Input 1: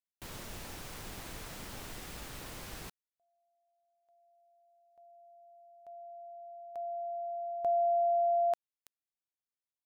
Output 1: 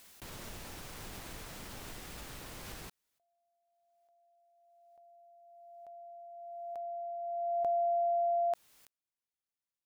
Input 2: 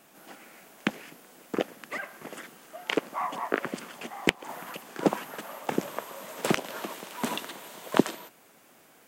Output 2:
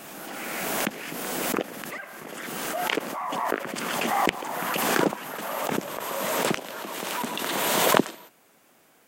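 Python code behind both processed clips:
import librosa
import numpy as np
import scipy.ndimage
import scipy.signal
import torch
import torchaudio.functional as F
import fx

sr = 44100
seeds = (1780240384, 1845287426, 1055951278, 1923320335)

y = fx.pre_swell(x, sr, db_per_s=21.0)
y = F.gain(torch.from_numpy(y), -2.0).numpy()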